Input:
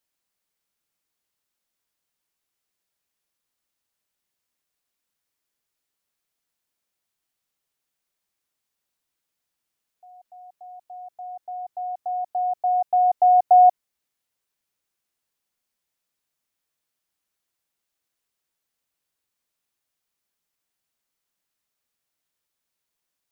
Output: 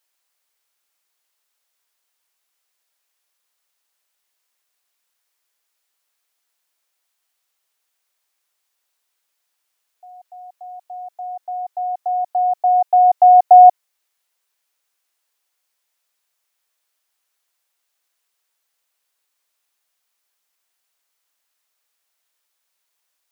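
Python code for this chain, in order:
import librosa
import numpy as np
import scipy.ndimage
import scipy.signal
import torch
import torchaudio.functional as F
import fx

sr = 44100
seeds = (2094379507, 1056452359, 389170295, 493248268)

y = scipy.signal.sosfilt(scipy.signal.butter(2, 570.0, 'highpass', fs=sr, output='sos'), x)
y = y * 10.0 ** (8.0 / 20.0)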